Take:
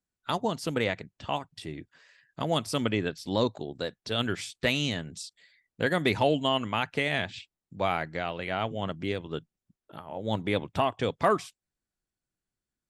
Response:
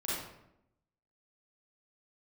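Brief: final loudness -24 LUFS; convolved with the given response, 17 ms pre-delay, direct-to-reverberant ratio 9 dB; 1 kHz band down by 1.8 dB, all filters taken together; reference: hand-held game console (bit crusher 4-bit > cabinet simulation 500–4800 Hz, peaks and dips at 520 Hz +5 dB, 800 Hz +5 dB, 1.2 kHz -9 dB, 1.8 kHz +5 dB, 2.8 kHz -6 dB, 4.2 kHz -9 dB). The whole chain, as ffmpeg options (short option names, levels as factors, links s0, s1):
-filter_complex "[0:a]equalizer=f=1000:t=o:g=-3.5,asplit=2[s0][s1];[1:a]atrim=start_sample=2205,adelay=17[s2];[s1][s2]afir=irnorm=-1:irlink=0,volume=0.211[s3];[s0][s3]amix=inputs=2:normalize=0,acrusher=bits=3:mix=0:aa=0.000001,highpass=500,equalizer=f=520:t=q:w=4:g=5,equalizer=f=800:t=q:w=4:g=5,equalizer=f=1200:t=q:w=4:g=-9,equalizer=f=1800:t=q:w=4:g=5,equalizer=f=2800:t=q:w=4:g=-6,equalizer=f=4200:t=q:w=4:g=-9,lowpass=f=4800:w=0.5412,lowpass=f=4800:w=1.3066,volume=2.37"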